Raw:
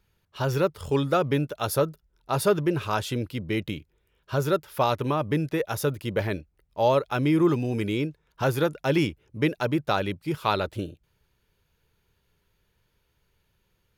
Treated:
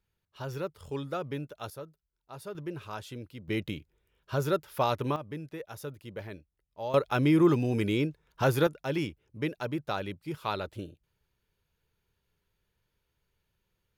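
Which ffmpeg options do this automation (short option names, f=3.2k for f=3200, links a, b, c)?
-af "asetnsamples=n=441:p=0,asendcmd='1.7 volume volume -19.5dB;2.55 volume volume -13dB;3.48 volume volume -4dB;5.16 volume volume -14dB;6.94 volume volume -1dB;8.67 volume volume -8dB',volume=-11.5dB"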